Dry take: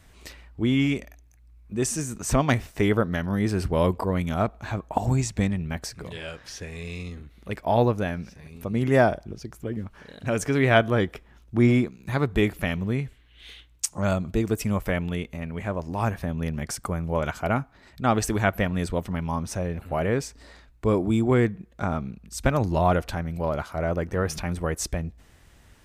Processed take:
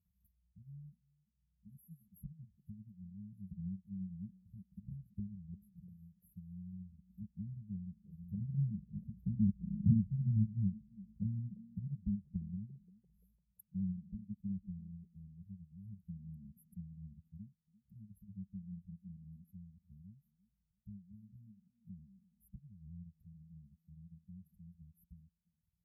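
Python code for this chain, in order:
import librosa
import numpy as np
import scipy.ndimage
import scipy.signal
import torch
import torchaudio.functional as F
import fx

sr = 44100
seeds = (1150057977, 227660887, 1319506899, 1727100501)

y = fx.doppler_pass(x, sr, speed_mps=13, closest_m=2.0, pass_at_s=9.71)
y = fx.formant_shift(y, sr, semitones=4)
y = y + 0.71 * np.pad(y, (int(4.0 * sr / 1000.0), 0))[:len(y)]
y = fx.transient(y, sr, attack_db=5, sustain_db=-8)
y = fx.brickwall_bandstop(y, sr, low_hz=200.0, high_hz=11000.0)
y = fx.env_lowpass_down(y, sr, base_hz=550.0, full_db=-52.5)
y = scipy.signal.sosfilt(scipy.signal.butter(2, 110.0, 'highpass', fs=sr, output='sos'), y)
y = fx.peak_eq(y, sr, hz=360.0, db=11.0, octaves=2.6)
y = fx.echo_stepped(y, sr, ms=343, hz=360.0, octaves=0.7, feedback_pct=70, wet_db=-7)
y = fx.comb_cascade(y, sr, direction='rising', hz=0.4)
y = F.gain(torch.from_numpy(y), 17.0).numpy()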